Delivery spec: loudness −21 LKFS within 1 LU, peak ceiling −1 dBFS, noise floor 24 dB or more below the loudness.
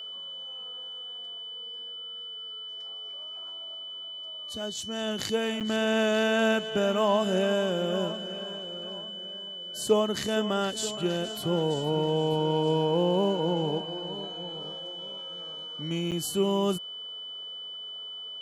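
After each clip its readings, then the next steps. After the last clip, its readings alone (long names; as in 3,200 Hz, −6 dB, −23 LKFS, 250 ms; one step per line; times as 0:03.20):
number of dropouts 2; longest dropout 7.9 ms; interfering tone 3,000 Hz; level of the tone −37 dBFS; integrated loudness −29.5 LKFS; sample peak −11.0 dBFS; target loudness −21.0 LKFS
→ repair the gap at 0:05.60/0:16.11, 7.9 ms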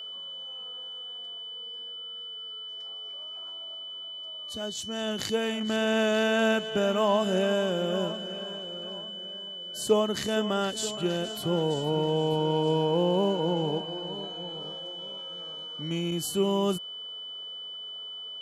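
number of dropouts 0; interfering tone 3,000 Hz; level of the tone −37 dBFS
→ notch filter 3,000 Hz, Q 30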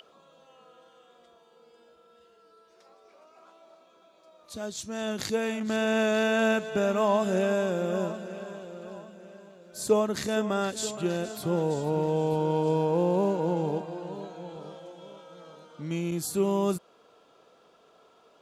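interfering tone none found; integrated loudness −28.0 LKFS; sample peak −11.5 dBFS; target loudness −21.0 LKFS
→ level +7 dB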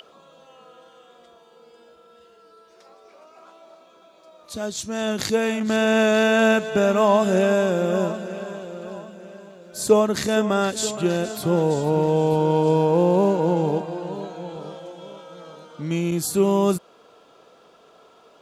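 integrated loudness −21.0 LKFS; sample peak −4.5 dBFS; background noise floor −53 dBFS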